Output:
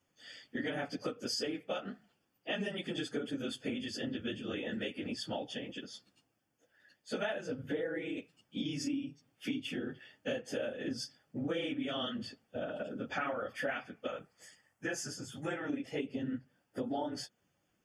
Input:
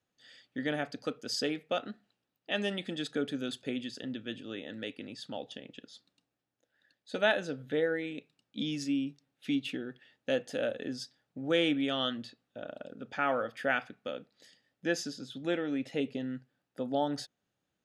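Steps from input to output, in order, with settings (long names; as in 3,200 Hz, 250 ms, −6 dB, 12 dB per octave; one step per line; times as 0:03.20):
random phases in long frames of 50 ms
0:14.07–0:15.70: octave-band graphic EQ 250/500/1,000/4,000/8,000 Hz −10/−5/+4/−11/+6 dB
downward compressor 6 to 1, threshold −40 dBFS, peak gain reduction 17 dB
Butterworth band-reject 3,900 Hz, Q 5.1
level +6 dB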